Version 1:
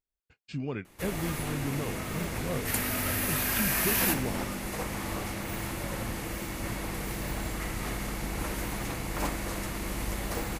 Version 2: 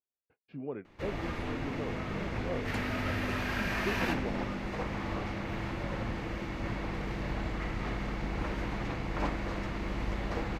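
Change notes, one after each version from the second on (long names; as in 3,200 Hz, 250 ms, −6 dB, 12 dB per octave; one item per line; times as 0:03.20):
speech: add resonant band-pass 530 Hz, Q 0.97
master: add high-frequency loss of the air 210 metres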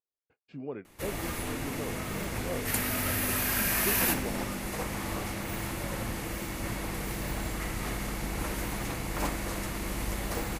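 master: remove high-frequency loss of the air 210 metres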